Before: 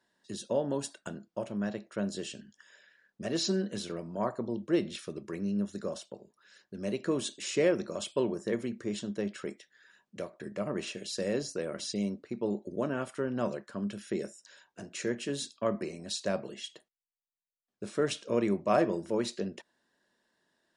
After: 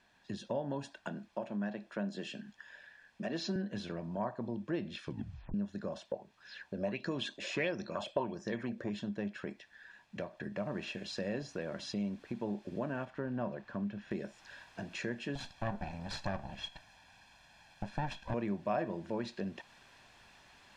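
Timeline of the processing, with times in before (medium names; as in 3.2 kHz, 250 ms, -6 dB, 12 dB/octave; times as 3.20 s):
0.94–3.56 s: high-pass 160 Hz 24 dB/octave
5.03 s: tape stop 0.51 s
6.11–8.90 s: sweeping bell 1.5 Hz 520–6000 Hz +16 dB
10.58 s: noise floor step -68 dB -57 dB
13.05–14.11 s: low-pass 2 kHz 6 dB/octave
15.35–18.34 s: comb filter that takes the minimum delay 1.2 ms
whole clip: low-pass 3.2 kHz 12 dB/octave; comb 1.2 ms, depth 45%; compression 2:1, threshold -43 dBFS; trim +3.5 dB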